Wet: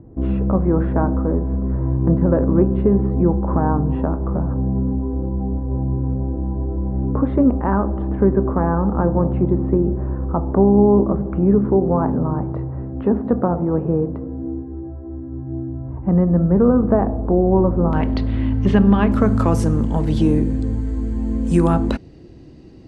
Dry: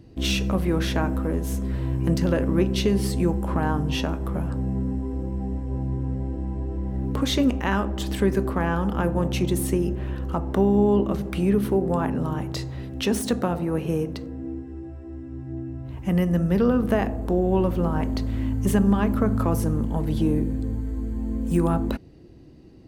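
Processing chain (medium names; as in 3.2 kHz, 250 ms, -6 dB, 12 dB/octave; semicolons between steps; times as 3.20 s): low-pass 1.2 kHz 24 dB/octave, from 17.93 s 4 kHz, from 19.12 s 8.6 kHz; trim +6 dB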